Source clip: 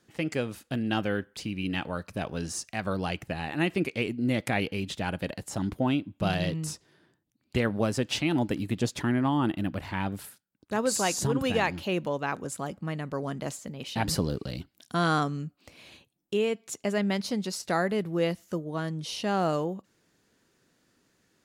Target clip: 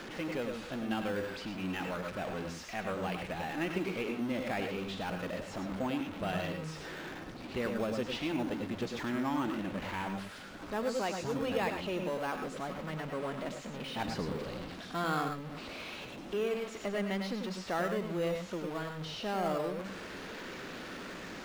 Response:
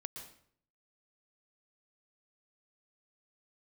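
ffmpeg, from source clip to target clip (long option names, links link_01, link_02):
-filter_complex "[0:a]aeval=exprs='val(0)+0.5*0.0447*sgn(val(0))':channel_layout=same,lowpass=3600,equalizer=frequency=110:width=0.84:gain=-10.5[link_01];[1:a]atrim=start_sample=2205,atrim=end_sample=6615,asetrate=52920,aresample=44100[link_02];[link_01][link_02]afir=irnorm=-1:irlink=0,asplit=2[link_03][link_04];[link_04]acrusher=samples=10:mix=1:aa=0.000001:lfo=1:lforange=10:lforate=0.28,volume=-10dB[link_05];[link_03][link_05]amix=inputs=2:normalize=0,volume=-4.5dB"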